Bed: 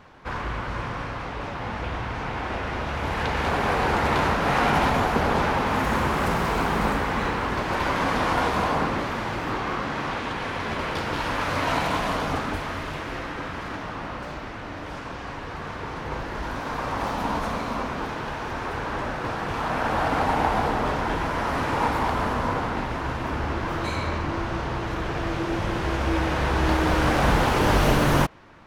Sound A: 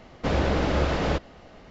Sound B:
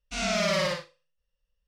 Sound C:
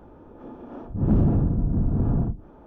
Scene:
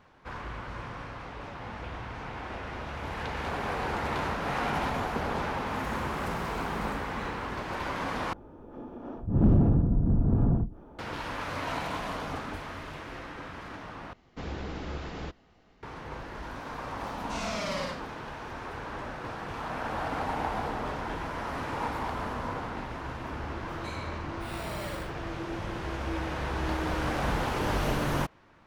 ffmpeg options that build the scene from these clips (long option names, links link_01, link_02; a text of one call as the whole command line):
ffmpeg -i bed.wav -i cue0.wav -i cue1.wav -i cue2.wav -filter_complex "[2:a]asplit=2[link_01][link_02];[0:a]volume=-9dB[link_03];[1:a]equalizer=frequency=580:width_type=o:width=0.33:gain=-8[link_04];[link_02]acrusher=samples=7:mix=1:aa=0.000001[link_05];[link_03]asplit=3[link_06][link_07][link_08];[link_06]atrim=end=8.334[link_09];[3:a]atrim=end=2.66,asetpts=PTS-STARTPTS,volume=-1.5dB[link_10];[link_07]atrim=start=10.986:end=14.134[link_11];[link_04]atrim=end=1.7,asetpts=PTS-STARTPTS,volume=-12.5dB[link_12];[link_08]atrim=start=15.826[link_13];[link_01]atrim=end=1.67,asetpts=PTS-STARTPTS,volume=-8.5dB,afade=type=in:duration=0.004:curve=hsin,afade=type=out:start_time=1.666:duration=0.004:curve=hsin,adelay=17180[link_14];[link_05]atrim=end=1.67,asetpts=PTS-STARTPTS,volume=-14dB,afade=type=in:duration=0.004:curve=hsin,afade=type=out:start_time=1.666:duration=0.004:curve=hsin,adelay=24290[link_15];[link_09][link_10]acrossfade=duration=0.004:curve1=hsin:curve2=hsin[link_16];[link_16][link_11]acrossfade=duration=0.004:curve1=hsin:curve2=hsin[link_17];[link_17][link_12]acrossfade=duration=0.004:curve1=hsin:curve2=hsin[link_18];[link_18][link_13]acrossfade=duration=0.004:curve1=hsin:curve2=hsin[link_19];[link_19][link_14][link_15]amix=inputs=3:normalize=0" out.wav